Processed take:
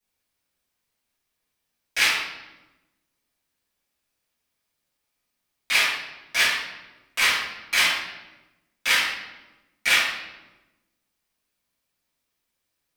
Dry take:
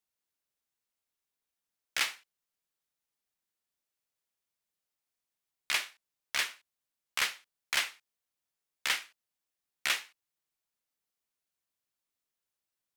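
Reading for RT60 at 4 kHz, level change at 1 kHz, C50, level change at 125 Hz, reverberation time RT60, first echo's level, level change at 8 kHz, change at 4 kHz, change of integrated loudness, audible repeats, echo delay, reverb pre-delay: 0.80 s, +11.0 dB, 1.5 dB, no reading, 1.1 s, no echo, +8.5 dB, +11.0 dB, +11.0 dB, no echo, no echo, 3 ms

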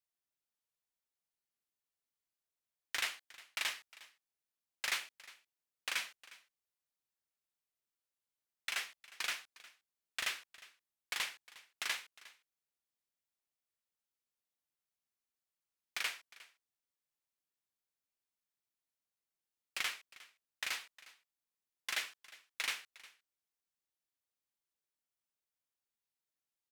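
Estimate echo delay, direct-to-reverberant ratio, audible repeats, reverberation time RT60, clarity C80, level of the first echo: 358 ms, no reverb, 1, no reverb, no reverb, -20.0 dB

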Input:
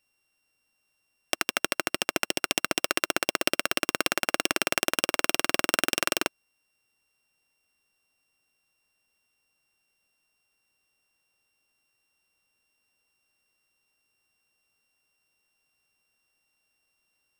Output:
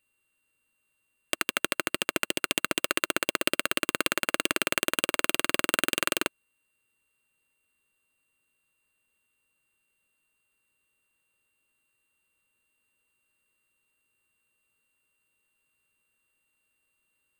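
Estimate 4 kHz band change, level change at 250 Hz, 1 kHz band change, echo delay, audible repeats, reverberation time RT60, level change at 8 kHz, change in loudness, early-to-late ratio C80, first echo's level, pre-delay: -1.0 dB, 0.0 dB, -1.5 dB, no echo, no echo, no reverb, -1.0 dB, -0.5 dB, no reverb, no echo, no reverb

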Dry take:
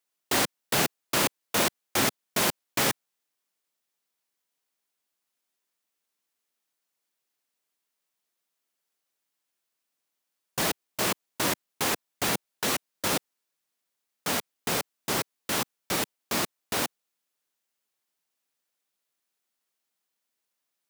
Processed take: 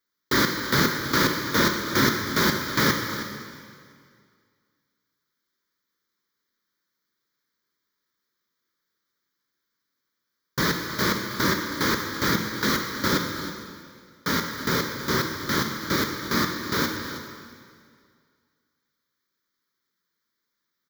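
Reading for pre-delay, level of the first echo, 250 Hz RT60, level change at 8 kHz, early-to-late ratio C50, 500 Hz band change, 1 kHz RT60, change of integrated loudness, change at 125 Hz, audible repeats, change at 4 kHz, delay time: 7 ms, -14.5 dB, 2.1 s, -2.5 dB, 4.0 dB, +3.5 dB, 2.0 s, +3.5 dB, +9.5 dB, 1, +3.5 dB, 320 ms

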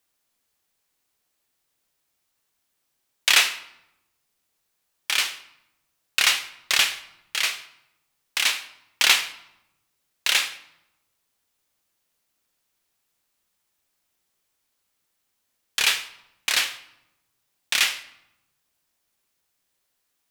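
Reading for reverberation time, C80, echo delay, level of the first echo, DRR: 0.90 s, 16.5 dB, no echo, no echo, 10.5 dB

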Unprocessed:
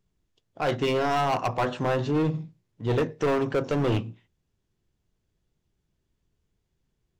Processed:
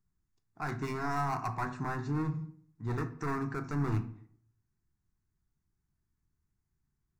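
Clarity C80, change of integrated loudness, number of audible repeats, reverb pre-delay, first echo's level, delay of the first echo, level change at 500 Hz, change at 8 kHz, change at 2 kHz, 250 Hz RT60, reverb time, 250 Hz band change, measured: 18.0 dB, -9.0 dB, no echo, 10 ms, no echo, no echo, -15.5 dB, no reading, -7.0 dB, 0.70 s, 0.65 s, -7.5 dB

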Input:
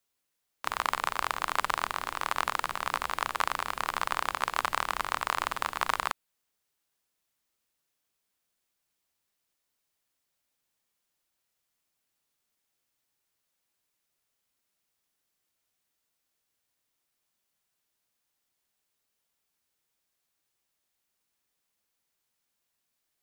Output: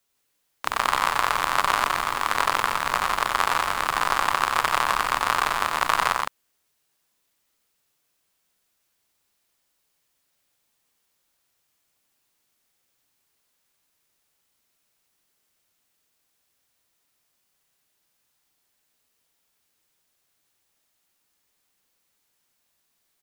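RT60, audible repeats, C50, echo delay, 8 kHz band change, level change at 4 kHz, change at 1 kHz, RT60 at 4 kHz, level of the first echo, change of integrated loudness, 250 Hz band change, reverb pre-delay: no reverb, 3, no reverb, 90 ms, +8.0 dB, +8.0 dB, +8.0 dB, no reverb, -6.0 dB, +8.0 dB, +8.5 dB, no reverb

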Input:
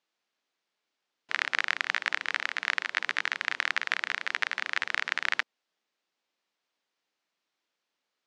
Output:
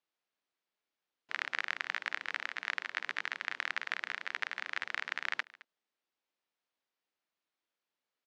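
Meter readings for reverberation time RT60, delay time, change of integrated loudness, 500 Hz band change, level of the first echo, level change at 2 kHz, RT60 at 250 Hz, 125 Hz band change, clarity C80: no reverb, 216 ms, -7.5 dB, -6.5 dB, -21.5 dB, -7.5 dB, no reverb, no reading, no reverb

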